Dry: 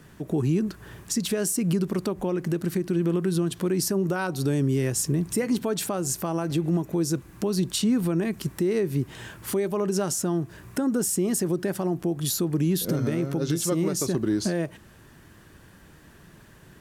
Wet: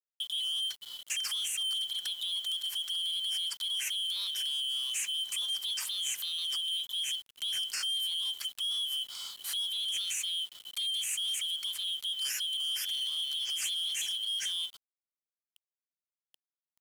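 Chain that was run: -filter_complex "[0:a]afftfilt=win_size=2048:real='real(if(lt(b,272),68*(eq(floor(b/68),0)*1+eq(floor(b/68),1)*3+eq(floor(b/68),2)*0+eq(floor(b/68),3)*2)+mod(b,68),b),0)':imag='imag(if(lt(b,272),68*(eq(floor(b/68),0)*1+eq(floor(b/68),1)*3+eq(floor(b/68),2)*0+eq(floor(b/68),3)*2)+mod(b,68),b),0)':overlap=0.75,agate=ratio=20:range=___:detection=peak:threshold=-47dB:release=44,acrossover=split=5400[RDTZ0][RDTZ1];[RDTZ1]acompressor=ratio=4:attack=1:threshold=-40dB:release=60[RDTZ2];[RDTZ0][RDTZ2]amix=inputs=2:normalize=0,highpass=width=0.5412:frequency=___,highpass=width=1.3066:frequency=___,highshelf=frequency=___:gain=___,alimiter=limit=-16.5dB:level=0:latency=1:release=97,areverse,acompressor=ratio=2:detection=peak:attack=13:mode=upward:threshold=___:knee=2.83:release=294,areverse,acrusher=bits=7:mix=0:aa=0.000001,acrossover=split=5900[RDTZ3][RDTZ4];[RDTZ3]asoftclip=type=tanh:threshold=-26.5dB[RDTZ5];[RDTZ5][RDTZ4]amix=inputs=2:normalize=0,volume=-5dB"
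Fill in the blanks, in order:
-28dB, 910, 910, 2900, 10.5, -44dB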